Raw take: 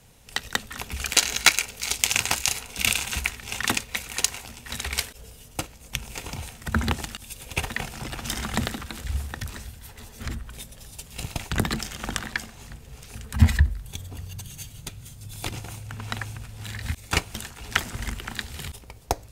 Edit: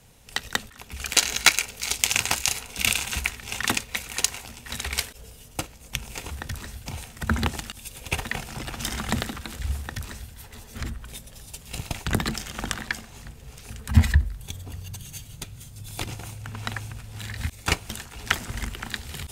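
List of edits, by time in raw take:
0.70–1.19 s: fade in, from -15 dB
9.23–9.78 s: copy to 6.31 s

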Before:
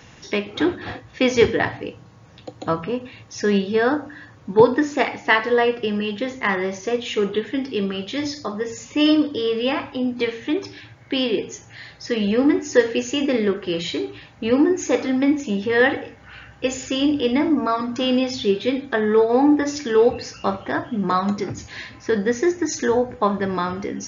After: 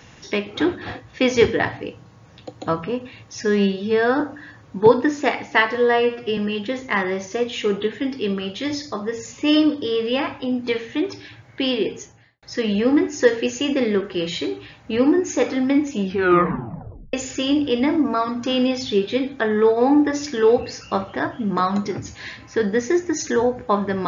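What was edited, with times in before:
3.41–3.94 s: stretch 1.5×
5.48–5.90 s: stretch 1.5×
11.46–11.95 s: studio fade out
15.54 s: tape stop 1.12 s

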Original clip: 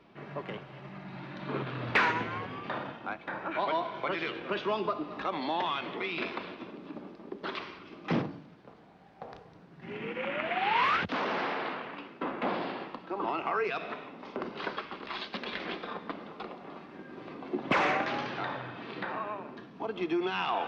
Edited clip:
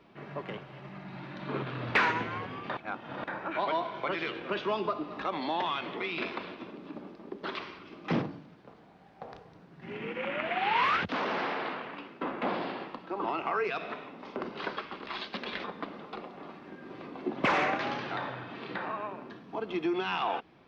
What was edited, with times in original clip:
2.77–3.24 s: reverse
15.64–15.91 s: delete

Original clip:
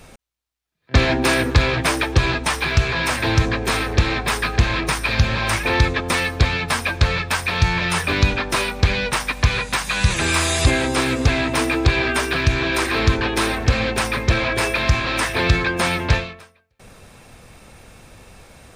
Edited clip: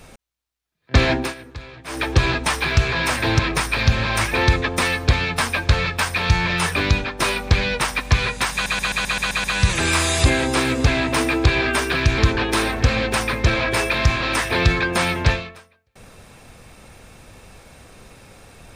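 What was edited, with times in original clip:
1.12–2.08 s: dip -20 dB, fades 0.22 s
3.39–4.71 s: delete
8.01–8.51 s: fade out equal-power, to -7.5 dB
9.85 s: stutter 0.13 s, 8 plays
12.59–13.02 s: delete

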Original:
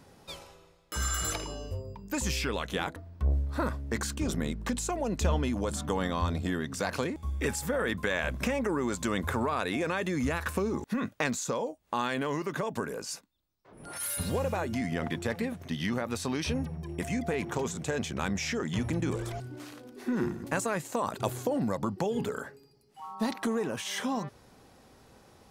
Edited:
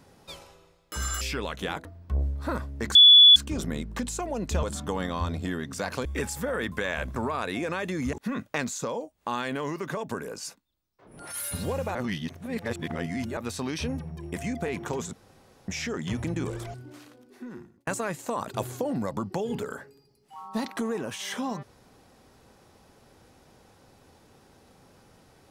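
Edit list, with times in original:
1.21–2.32 s: delete
4.06 s: add tone 3.43 kHz -9.5 dBFS 0.41 s
5.33–5.64 s: delete
7.06–7.31 s: delete
8.42–9.34 s: delete
10.31–10.79 s: delete
14.61–16.03 s: reverse
17.79–18.34 s: room tone
19.18–20.53 s: fade out

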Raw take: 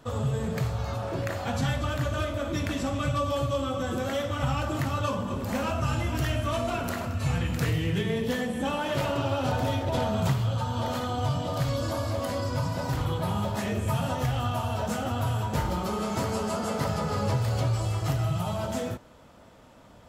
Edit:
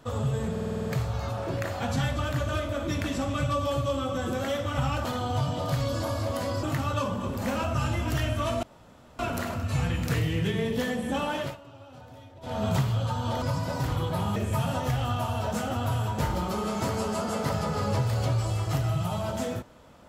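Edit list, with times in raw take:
0.51 s: stutter 0.05 s, 8 plays
6.70 s: insert room tone 0.56 s
8.86–10.15 s: dip -20.5 dB, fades 0.22 s
10.93–12.51 s: move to 4.70 s
13.45–13.71 s: delete

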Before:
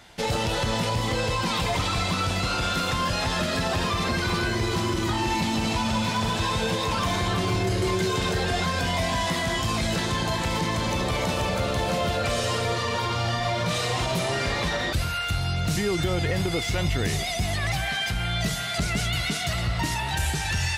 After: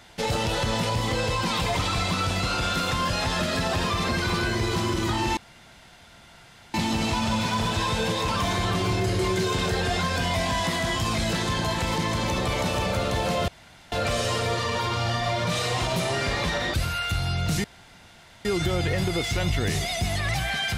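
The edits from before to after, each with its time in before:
5.37 s: insert room tone 1.37 s
12.11 s: insert room tone 0.44 s
15.83 s: insert room tone 0.81 s

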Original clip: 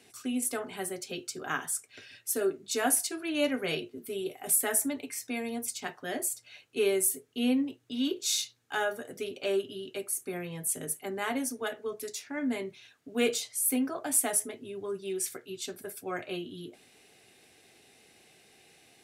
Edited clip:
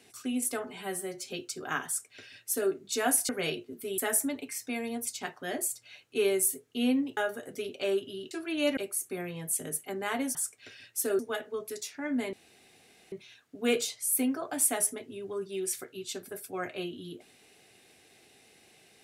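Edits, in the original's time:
0.65–1.07 s: stretch 1.5×
1.66–2.50 s: copy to 11.51 s
3.08–3.54 s: move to 9.93 s
4.23–4.59 s: delete
7.78–8.79 s: delete
12.65 s: insert room tone 0.79 s

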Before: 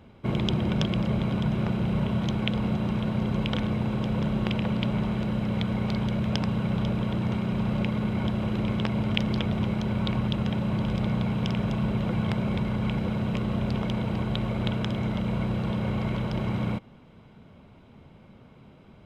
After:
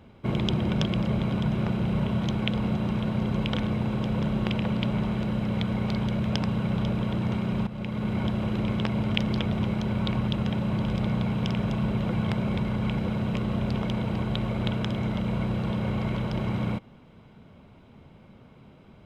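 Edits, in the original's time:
7.67–8.12 s: fade in, from -13.5 dB

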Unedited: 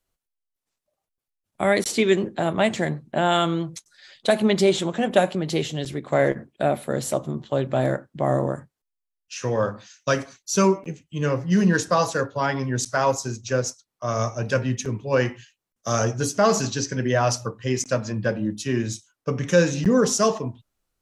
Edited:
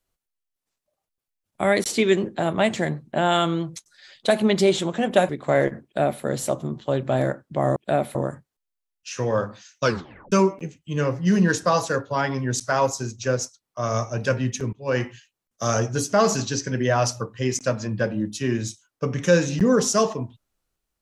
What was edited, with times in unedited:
5.29–5.93 s: delete
6.48–6.87 s: copy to 8.40 s
10.09 s: tape stop 0.48 s
14.98–15.27 s: fade in, from -20.5 dB

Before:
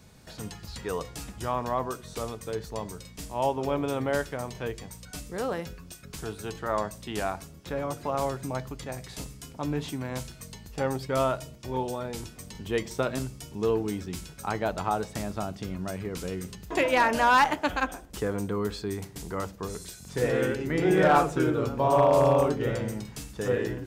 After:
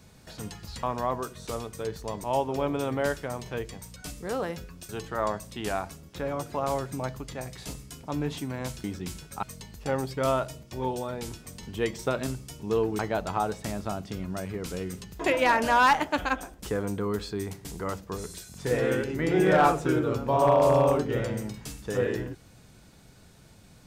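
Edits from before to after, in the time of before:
0.83–1.51 s: delete
2.92–3.33 s: delete
5.98–6.40 s: delete
13.91–14.50 s: move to 10.35 s

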